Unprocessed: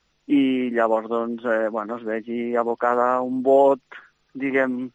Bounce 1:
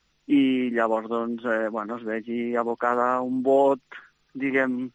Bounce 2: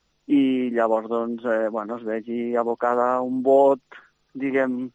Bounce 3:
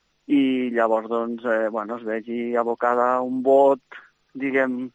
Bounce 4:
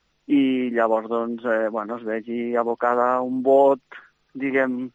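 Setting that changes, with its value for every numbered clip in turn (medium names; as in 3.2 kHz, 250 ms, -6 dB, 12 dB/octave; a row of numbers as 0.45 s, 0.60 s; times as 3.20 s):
peaking EQ, frequency: 620 Hz, 2 kHz, 72 Hz, 11 kHz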